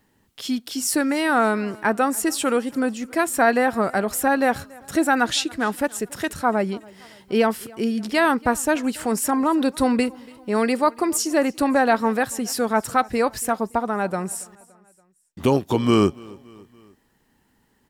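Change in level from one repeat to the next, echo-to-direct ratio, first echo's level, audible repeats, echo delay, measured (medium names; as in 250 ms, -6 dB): -5.5 dB, -22.5 dB, -24.0 dB, 3, 284 ms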